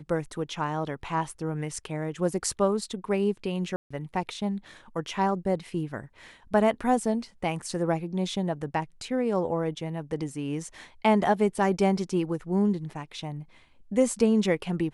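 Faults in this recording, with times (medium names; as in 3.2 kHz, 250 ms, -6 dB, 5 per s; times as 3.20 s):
3.76–3.90 s: dropout 145 ms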